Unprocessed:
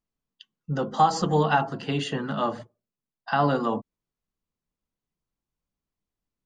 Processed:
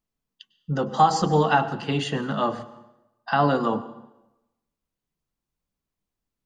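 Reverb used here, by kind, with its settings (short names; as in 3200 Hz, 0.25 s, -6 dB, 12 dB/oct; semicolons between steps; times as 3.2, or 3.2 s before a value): plate-style reverb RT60 0.96 s, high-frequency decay 0.8×, pre-delay 90 ms, DRR 15.5 dB; gain +2 dB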